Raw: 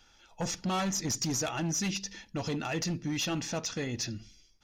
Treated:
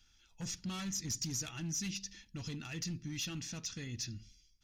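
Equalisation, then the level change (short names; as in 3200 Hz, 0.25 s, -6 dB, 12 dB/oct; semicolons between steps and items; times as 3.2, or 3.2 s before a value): passive tone stack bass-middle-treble 6-0-2; +9.5 dB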